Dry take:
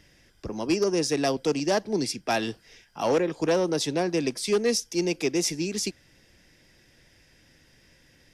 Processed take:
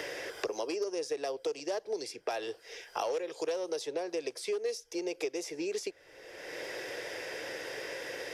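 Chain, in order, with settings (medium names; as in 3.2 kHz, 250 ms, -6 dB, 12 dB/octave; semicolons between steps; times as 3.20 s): compression 3:1, threshold -30 dBFS, peak gain reduction 8.5 dB; resonant low shelf 310 Hz -13 dB, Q 3; three bands compressed up and down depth 100%; trim -6 dB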